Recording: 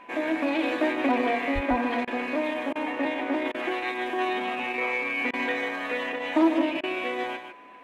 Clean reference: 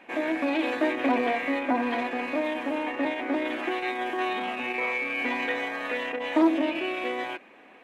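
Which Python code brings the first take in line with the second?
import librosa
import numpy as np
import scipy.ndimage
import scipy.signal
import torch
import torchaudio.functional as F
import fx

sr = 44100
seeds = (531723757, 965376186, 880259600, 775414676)

y = fx.notch(x, sr, hz=1000.0, q=30.0)
y = fx.highpass(y, sr, hz=140.0, slope=24, at=(1.54, 1.66), fade=0.02)
y = fx.fix_interpolate(y, sr, at_s=(2.05, 2.73, 3.52, 5.31, 6.81), length_ms=23.0)
y = fx.fix_echo_inverse(y, sr, delay_ms=151, level_db=-8.0)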